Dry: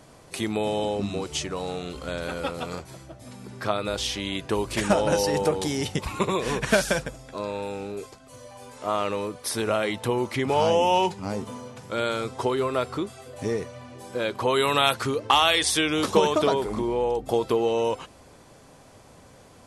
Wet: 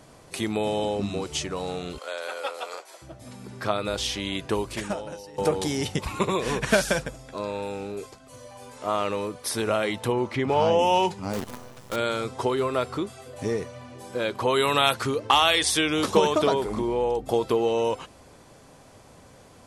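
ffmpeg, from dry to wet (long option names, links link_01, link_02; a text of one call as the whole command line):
ffmpeg -i in.wav -filter_complex "[0:a]asettb=1/sr,asplit=3[link_01][link_02][link_03];[link_01]atrim=end=1.984[link_04];[link_02]atrim=start=1.98:end=3.02,asetpts=PTS-STARTPTS,afade=type=in:duration=0.004:curve=qsin,afade=type=out:start_time=1.036:duration=0.004:curve=qsin,highpass=frequency=480:width=0.5412,highpass=frequency=480:width=1.3066[link_05];[link_03]atrim=start=3.016[link_06];[link_04][link_05]acrossfade=duration=0.004:curve1=hsin:curve2=qsin[link_07];[link_07][link_06]acrossfade=duration=0.004:curve1=qsin:curve2=hsin,asettb=1/sr,asplit=3[link_08][link_09][link_10];[link_08]atrim=end=10.124[link_11];[link_09]atrim=start=10.12:end=10.79,asetpts=PTS-STARTPTS,afade=type=in:duration=0.004:curve=qsin,afade=type=out:start_time=0.666:duration=0.004:curve=qsin,aemphasis=mode=reproduction:type=50fm[link_12];[link_10]atrim=start=10.786[link_13];[link_11][link_12]acrossfade=duration=0.004:curve1=hsin:curve2=qsin[link_14];[link_14][link_13]acrossfade=duration=0.004:curve1=qsin:curve2=hsin,asettb=1/sr,asplit=3[link_15][link_16][link_17];[link_15]atrim=end=11.334[link_18];[link_16]atrim=start=11.33:end=11.96,asetpts=PTS-STARTPTS,afade=type=in:duration=0.004:curve=qsin,afade=type=out:start_time=0.626:duration=0.004:curve=qsin,acrusher=bits=6:dc=4:mix=0:aa=0.000001[link_19];[link_17]atrim=start=11.956[link_20];[link_18][link_19]acrossfade=duration=0.004:curve1=hsin:curve2=qsin[link_21];[link_21][link_20]acrossfade=duration=0.004:curve1=qsin:curve2=hsin,asplit=2[link_22][link_23];[link_22]atrim=end=5.38,asetpts=PTS-STARTPTS,afade=type=out:start_time=4.53:duration=0.85:curve=qua:silence=0.0841395[link_24];[link_23]atrim=start=5.38,asetpts=PTS-STARTPTS,afade=type=in:duration=0.004:curve=hsin:silence=0.0841395[link_25];[link_24][link_25]concat=n=2:v=0:a=1" out.wav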